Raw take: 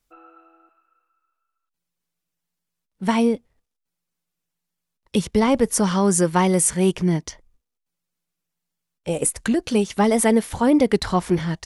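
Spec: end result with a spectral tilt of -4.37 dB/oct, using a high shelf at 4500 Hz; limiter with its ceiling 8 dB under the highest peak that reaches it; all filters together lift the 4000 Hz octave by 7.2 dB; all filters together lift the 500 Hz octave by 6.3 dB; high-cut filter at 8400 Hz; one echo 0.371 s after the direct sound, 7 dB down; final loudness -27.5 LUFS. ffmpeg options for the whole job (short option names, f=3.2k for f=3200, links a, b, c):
-af "lowpass=8.4k,equalizer=f=500:t=o:g=7.5,equalizer=f=4k:t=o:g=5,highshelf=f=4.5k:g=8.5,alimiter=limit=-9dB:level=0:latency=1,aecho=1:1:371:0.447,volume=-9dB"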